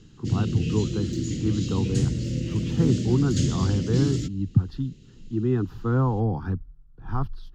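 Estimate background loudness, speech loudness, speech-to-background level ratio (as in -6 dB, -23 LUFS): -28.0 LUFS, -27.0 LUFS, 1.0 dB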